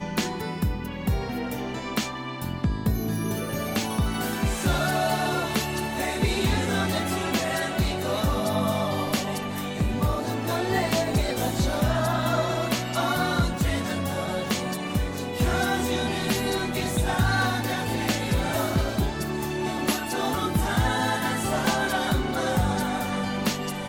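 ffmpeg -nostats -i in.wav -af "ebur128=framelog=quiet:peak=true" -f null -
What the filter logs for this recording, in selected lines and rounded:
Integrated loudness:
  I:         -26.0 LUFS
  Threshold: -36.0 LUFS
Loudness range:
  LRA:         2.0 LU
  Threshold: -45.9 LUFS
  LRA low:   -27.0 LUFS
  LRA high:  -25.0 LUFS
True peak:
  Peak:      -11.2 dBFS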